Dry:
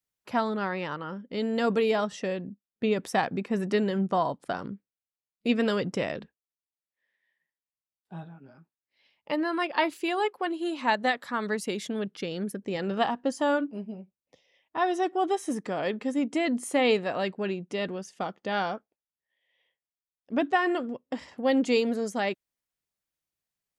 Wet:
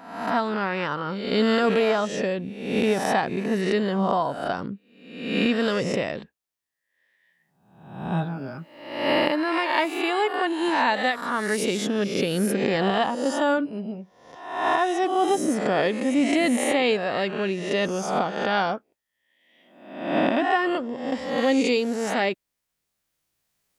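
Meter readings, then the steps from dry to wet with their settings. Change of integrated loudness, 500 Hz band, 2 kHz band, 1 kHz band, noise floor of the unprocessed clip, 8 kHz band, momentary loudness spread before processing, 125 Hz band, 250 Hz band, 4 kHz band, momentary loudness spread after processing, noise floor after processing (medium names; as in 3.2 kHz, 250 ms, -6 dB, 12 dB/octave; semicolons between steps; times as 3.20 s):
+5.0 dB, +5.0 dB, +6.0 dB, +5.0 dB, under -85 dBFS, +8.0 dB, 11 LU, +6.0 dB, +5.0 dB, +7.0 dB, 10 LU, -80 dBFS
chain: reverse spectral sustain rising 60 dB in 0.85 s; recorder AGC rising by 6.2 dB/s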